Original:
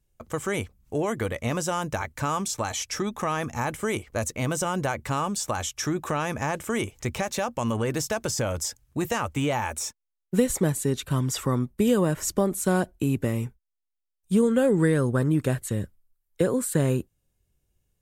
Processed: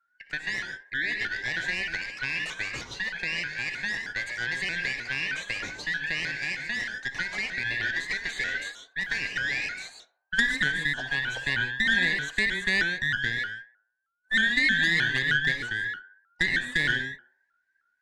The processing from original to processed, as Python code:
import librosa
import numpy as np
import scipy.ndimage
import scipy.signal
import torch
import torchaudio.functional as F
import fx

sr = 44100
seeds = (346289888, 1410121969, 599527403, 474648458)

p1 = fx.band_shuffle(x, sr, order='3142')
p2 = scipy.signal.sosfilt(scipy.signal.butter(2, 3600.0, 'lowpass', fs=sr, output='sos'), p1)
p3 = fx.cheby_harmonics(p2, sr, harmonics=(3, 4, 5), levels_db=(-13, -17, -24), full_scale_db=-8.5)
p4 = p3 + fx.echo_banded(p3, sr, ms=63, feedback_pct=58, hz=850.0, wet_db=-12, dry=0)
p5 = fx.rev_gated(p4, sr, seeds[0], gate_ms=170, shape='rising', drr_db=5.0)
y = fx.vibrato_shape(p5, sr, shape='saw_up', rate_hz=3.2, depth_cents=160.0)